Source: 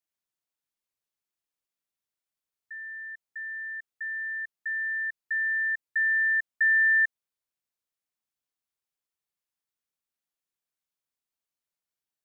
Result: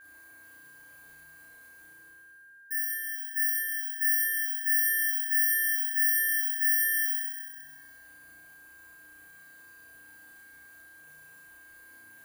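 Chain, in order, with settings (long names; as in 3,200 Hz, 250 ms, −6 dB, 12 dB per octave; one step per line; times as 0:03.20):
running median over 15 samples
reverb reduction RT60 1.1 s
brickwall limiter −36 dBFS, peak gain reduction 14 dB
reversed playback
upward compression, threshold −46 dBFS
reversed playback
bad sample-rate conversion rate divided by 4×, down filtered, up zero stuff
flutter between parallel walls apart 5.7 metres, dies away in 0.59 s
feedback delay network reverb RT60 1.9 s, low-frequency decay 0.9×, high-frequency decay 0.85×, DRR −6 dB
steady tone 1,600 Hz −51 dBFS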